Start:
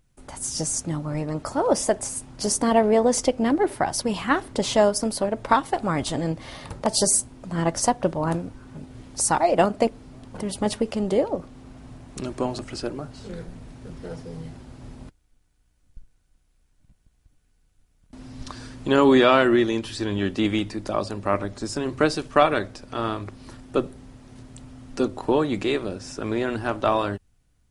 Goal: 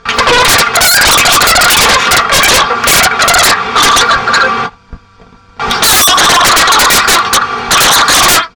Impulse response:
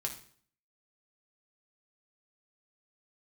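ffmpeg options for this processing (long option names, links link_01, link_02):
-filter_complex "[0:a]lowpass=frequency=1600:width=0.5412,lowpass=frequency=1600:width=1.3066,lowshelf=frequency=240:width_type=q:width=1.5:gain=-11,asplit=2[link_01][link_02];[link_02]adelay=14,volume=-10dB[link_03];[link_01][link_03]amix=inputs=2:normalize=0,asplit=2[link_04][link_05];[link_05]adelay=262.4,volume=-26dB,highshelf=frequency=4000:gain=-5.9[link_06];[link_04][link_06]amix=inputs=2:normalize=0[link_07];[1:a]atrim=start_sample=2205,afade=type=out:start_time=0.19:duration=0.01,atrim=end_sample=8820,asetrate=48510,aresample=44100[link_08];[link_07][link_08]afir=irnorm=-1:irlink=0,asplit=2[link_09][link_10];[link_10]acompressor=threshold=-29dB:ratio=6,volume=-1dB[link_11];[link_09][link_11]amix=inputs=2:normalize=0,asoftclip=type=tanh:threshold=-16.5dB,equalizer=frequency=370:width=3.6:gain=7,aeval=exprs='0.376*sin(PI/2*7.08*val(0)/0.376)':channel_layout=same,asetrate=142884,aresample=44100,volume=5.5dB"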